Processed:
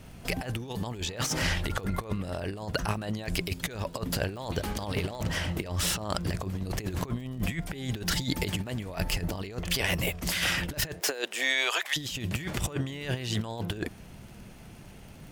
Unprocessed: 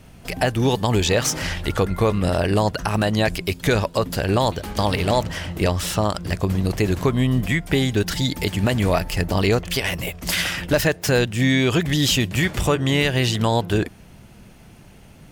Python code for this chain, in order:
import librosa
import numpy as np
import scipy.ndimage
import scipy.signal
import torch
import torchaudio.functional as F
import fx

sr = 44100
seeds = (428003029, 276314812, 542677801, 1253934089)

y = fx.highpass(x, sr, hz=fx.line((10.99, 300.0), (11.96, 870.0)), slope=24, at=(10.99, 11.96), fade=0.02)
y = fx.over_compress(y, sr, threshold_db=-24.0, ratio=-0.5)
y = fx.dmg_crackle(y, sr, seeds[0], per_s=51.0, level_db=-36.0)
y = y * librosa.db_to_amplitude(-6.0)